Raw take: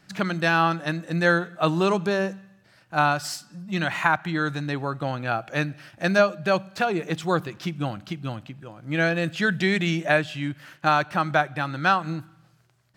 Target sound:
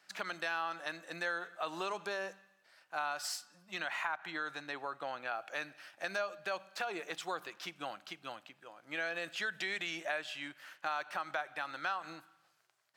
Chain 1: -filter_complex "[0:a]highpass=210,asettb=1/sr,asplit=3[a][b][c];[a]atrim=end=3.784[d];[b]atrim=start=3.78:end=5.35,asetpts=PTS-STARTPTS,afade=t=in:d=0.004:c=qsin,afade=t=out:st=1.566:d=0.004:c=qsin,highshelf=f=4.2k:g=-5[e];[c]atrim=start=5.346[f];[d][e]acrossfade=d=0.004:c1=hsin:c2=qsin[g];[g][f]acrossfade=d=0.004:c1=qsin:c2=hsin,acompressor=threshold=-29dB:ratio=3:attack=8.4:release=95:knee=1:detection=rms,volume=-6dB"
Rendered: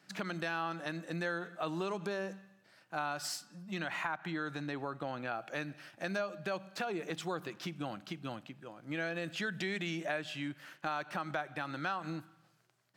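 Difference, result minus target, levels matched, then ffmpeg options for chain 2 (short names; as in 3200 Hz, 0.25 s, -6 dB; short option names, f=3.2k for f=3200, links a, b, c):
250 Hz band +10.0 dB
-filter_complex "[0:a]highpass=630,asettb=1/sr,asplit=3[a][b][c];[a]atrim=end=3.784[d];[b]atrim=start=3.78:end=5.35,asetpts=PTS-STARTPTS,afade=t=in:d=0.004:c=qsin,afade=t=out:st=1.566:d=0.004:c=qsin,highshelf=f=4.2k:g=-5[e];[c]atrim=start=5.346[f];[d][e]acrossfade=d=0.004:c1=hsin:c2=qsin[g];[g][f]acrossfade=d=0.004:c1=qsin:c2=hsin,acompressor=threshold=-29dB:ratio=3:attack=8.4:release=95:knee=1:detection=rms,volume=-6dB"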